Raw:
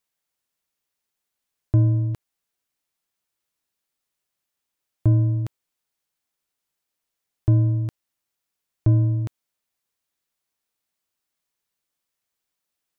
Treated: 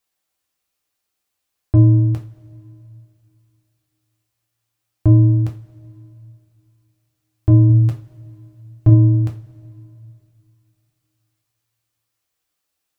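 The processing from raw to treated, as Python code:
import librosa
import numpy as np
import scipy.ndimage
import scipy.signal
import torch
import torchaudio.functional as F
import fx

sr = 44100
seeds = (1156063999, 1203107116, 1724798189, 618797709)

y = fx.comb(x, sr, ms=7.5, depth=0.69, at=(7.69, 8.9))
y = fx.rev_double_slope(y, sr, seeds[0], early_s=0.29, late_s=2.9, knee_db=-22, drr_db=0.5)
y = F.gain(torch.from_numpy(y), 2.5).numpy()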